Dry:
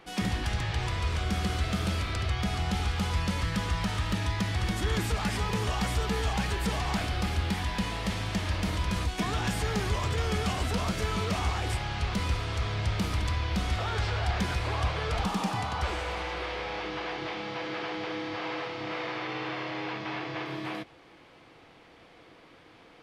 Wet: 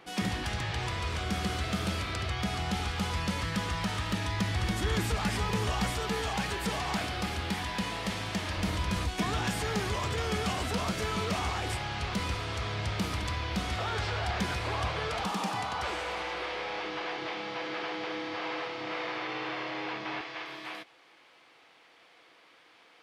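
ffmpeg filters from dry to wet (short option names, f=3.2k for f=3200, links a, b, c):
-af "asetnsamples=n=441:p=0,asendcmd='4.32 highpass f 49;5.9 highpass f 180;8.57 highpass f 61;9.43 highpass f 130;15.08 highpass f 290;20.21 highpass f 1200',highpass=f=120:p=1"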